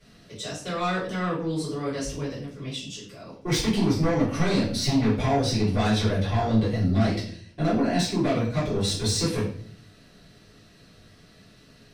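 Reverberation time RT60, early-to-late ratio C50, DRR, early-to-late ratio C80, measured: 0.55 s, 5.5 dB, -10.5 dB, 10.0 dB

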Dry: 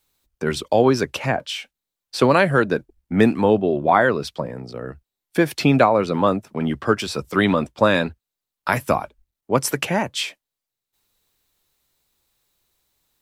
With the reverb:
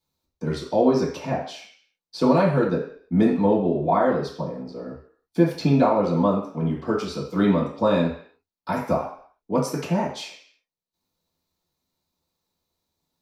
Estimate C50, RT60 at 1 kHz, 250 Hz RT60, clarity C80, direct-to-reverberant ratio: 5.5 dB, 0.55 s, 0.50 s, 9.0 dB, -9.0 dB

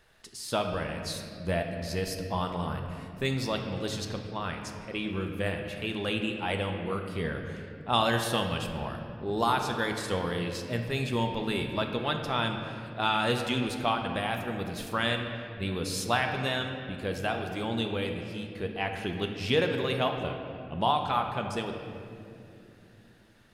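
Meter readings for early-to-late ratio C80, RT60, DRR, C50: 6.5 dB, 2.8 s, 3.5 dB, 5.0 dB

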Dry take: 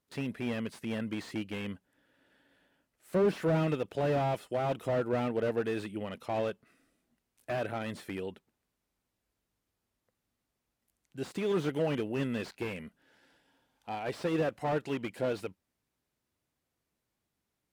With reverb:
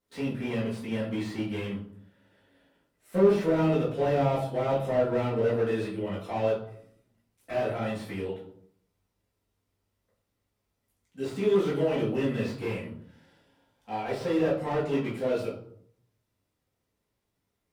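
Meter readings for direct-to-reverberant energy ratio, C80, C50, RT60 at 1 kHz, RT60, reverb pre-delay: -9.0 dB, 10.0 dB, 5.5 dB, 0.60 s, 0.65 s, 4 ms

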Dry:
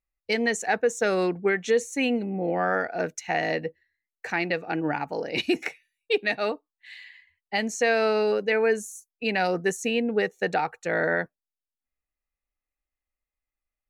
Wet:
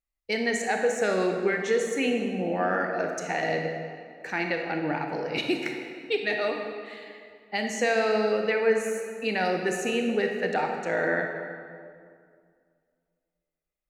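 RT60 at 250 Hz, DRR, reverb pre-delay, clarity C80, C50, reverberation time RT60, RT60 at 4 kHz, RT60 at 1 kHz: 2.5 s, 2.5 dB, 24 ms, 5.0 dB, 3.5 dB, 2.2 s, 1.4 s, 2.1 s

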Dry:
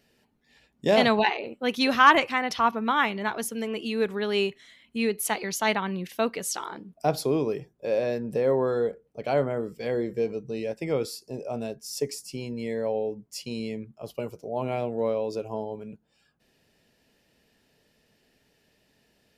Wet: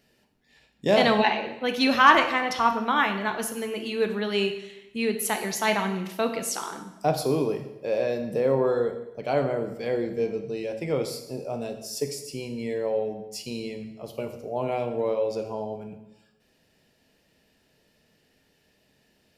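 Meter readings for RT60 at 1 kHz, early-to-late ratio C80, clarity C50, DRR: 1.0 s, 11.5 dB, 9.0 dB, 5.5 dB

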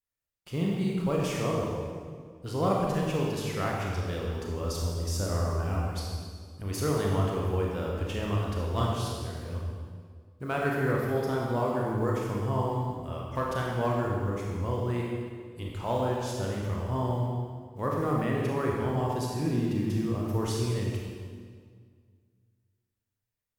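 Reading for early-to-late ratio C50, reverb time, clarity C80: -0.5 dB, 1.9 s, 1.0 dB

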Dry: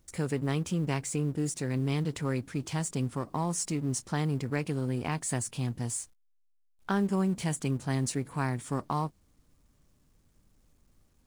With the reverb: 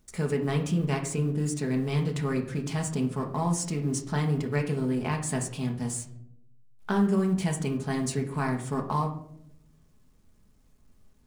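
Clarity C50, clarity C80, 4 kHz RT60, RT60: 9.5 dB, 13.5 dB, 0.35 s, 0.75 s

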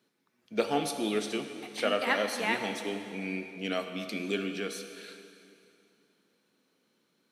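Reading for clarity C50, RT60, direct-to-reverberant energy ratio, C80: 7.5 dB, 2.6 s, 6.0 dB, 8.0 dB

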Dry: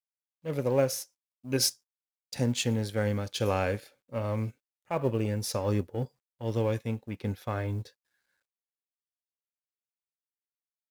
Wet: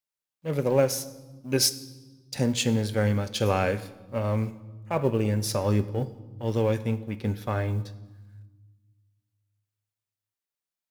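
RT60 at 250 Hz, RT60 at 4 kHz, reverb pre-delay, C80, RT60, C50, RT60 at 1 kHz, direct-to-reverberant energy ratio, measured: 2.0 s, 1.0 s, 5 ms, 18.5 dB, 1.3 s, 16.5 dB, 1.2 s, 11.5 dB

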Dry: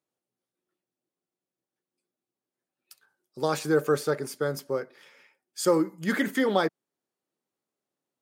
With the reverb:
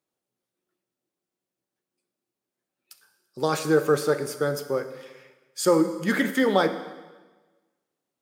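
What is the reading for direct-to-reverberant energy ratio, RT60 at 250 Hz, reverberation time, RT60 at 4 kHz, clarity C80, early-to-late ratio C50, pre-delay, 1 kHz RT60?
9.0 dB, 1.3 s, 1.3 s, 1.2 s, 12.5 dB, 11.0 dB, 5 ms, 1.3 s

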